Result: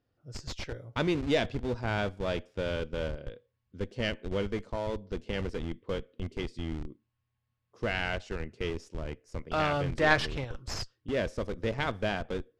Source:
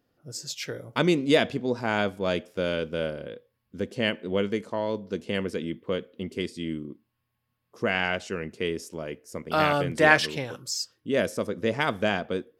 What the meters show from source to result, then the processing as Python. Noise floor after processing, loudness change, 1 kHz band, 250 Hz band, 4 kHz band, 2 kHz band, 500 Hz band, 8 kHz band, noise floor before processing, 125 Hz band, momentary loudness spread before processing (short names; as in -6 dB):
-81 dBFS, -5.5 dB, -5.5 dB, -6.0 dB, -6.0 dB, -6.0 dB, -6.0 dB, -10.5 dB, -78 dBFS, -1.0 dB, 14 LU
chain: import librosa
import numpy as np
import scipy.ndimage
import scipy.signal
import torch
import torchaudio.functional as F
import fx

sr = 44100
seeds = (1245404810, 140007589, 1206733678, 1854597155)

p1 = fx.tracing_dist(x, sr, depth_ms=0.082)
p2 = fx.schmitt(p1, sr, flips_db=-28.5)
p3 = p1 + F.gain(torch.from_numpy(p2), -6.0).numpy()
p4 = scipy.signal.sosfilt(scipy.signal.butter(2, 5700.0, 'lowpass', fs=sr, output='sos'), p3)
p5 = fx.low_shelf_res(p4, sr, hz=140.0, db=6.0, q=1.5)
y = F.gain(torch.from_numpy(p5), -7.0).numpy()